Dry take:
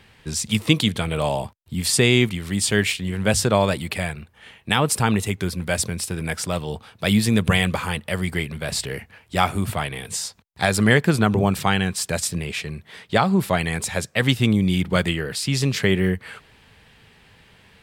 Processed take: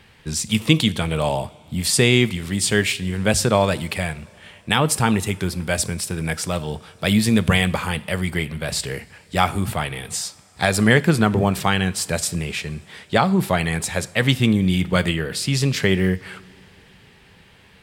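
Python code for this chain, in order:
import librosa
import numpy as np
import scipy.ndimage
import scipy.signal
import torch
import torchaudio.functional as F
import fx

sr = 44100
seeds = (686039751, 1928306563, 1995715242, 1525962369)

y = fx.rev_double_slope(x, sr, seeds[0], early_s=0.49, late_s=4.4, knee_db=-18, drr_db=15.0)
y = y * librosa.db_to_amplitude(1.0)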